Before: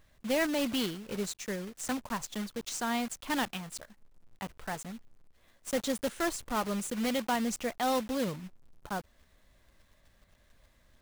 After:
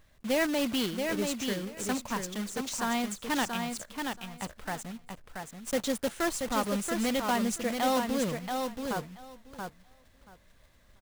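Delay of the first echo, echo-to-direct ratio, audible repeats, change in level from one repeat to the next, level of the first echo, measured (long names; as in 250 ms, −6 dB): 680 ms, −5.0 dB, 2, −16.5 dB, −5.0 dB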